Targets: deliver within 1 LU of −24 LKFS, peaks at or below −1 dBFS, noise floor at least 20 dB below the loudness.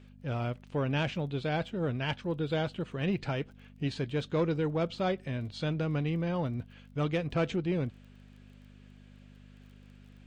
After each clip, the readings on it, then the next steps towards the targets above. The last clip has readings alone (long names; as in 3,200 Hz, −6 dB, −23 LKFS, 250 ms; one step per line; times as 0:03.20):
crackle rate 21 per second; mains hum 50 Hz; hum harmonics up to 250 Hz; level of the hum −52 dBFS; integrated loudness −33.0 LKFS; sample peak −19.5 dBFS; target loudness −24.0 LKFS
→ click removal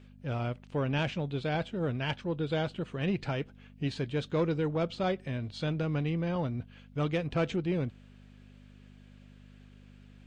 crackle rate 0 per second; mains hum 50 Hz; hum harmonics up to 250 Hz; level of the hum −52 dBFS
→ hum removal 50 Hz, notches 5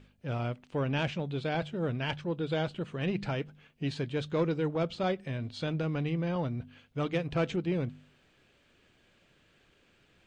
mains hum none found; integrated loudness −33.0 LKFS; sample peak −19.0 dBFS; target loudness −24.0 LKFS
→ level +9 dB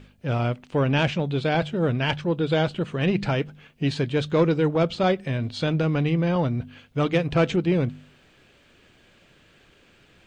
integrated loudness −24.0 LKFS; sample peak −10.0 dBFS; background noise floor −58 dBFS